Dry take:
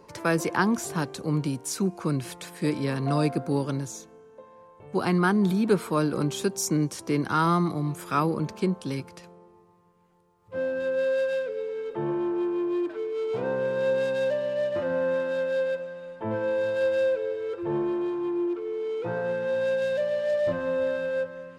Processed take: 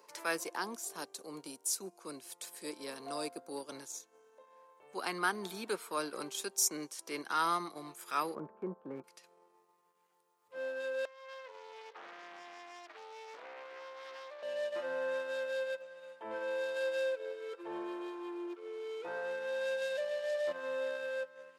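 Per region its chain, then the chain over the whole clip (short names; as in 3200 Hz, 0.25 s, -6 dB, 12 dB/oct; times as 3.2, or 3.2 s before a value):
0.44–3.72 HPF 150 Hz + bell 1900 Hz -7.5 dB 2.1 oct
8.35–9.04 LPF 1500 Hz 24 dB/oct + tilt -3 dB/oct
11.05–14.43 three-band isolator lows -17 dB, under 510 Hz, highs -15 dB, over 4500 Hz + compressor 16:1, threshold -36 dBFS + Doppler distortion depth 0.9 ms
whole clip: transient shaper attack -4 dB, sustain -8 dB; HPF 380 Hz 12 dB/oct; tilt +2.5 dB/oct; gain -6.5 dB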